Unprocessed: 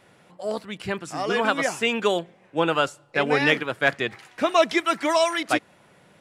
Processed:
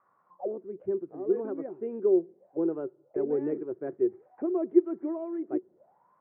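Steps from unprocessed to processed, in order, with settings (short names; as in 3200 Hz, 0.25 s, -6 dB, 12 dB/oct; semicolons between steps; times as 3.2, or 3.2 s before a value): LPF 2000 Hz 24 dB/oct; tilt -3.5 dB/oct; auto-wah 370–1200 Hz, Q 14, down, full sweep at -24 dBFS; gain +5 dB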